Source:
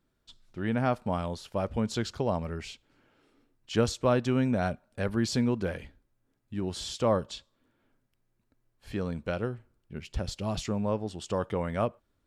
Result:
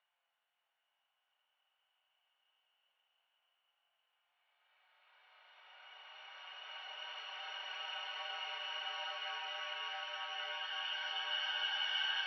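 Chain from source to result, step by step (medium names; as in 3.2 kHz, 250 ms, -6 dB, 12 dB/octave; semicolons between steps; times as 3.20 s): bit-reversed sample order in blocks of 256 samples; Paulstretch 12×, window 0.50 s, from 8.29 s; mistuned SSB +170 Hz 550–3100 Hz; trim +7 dB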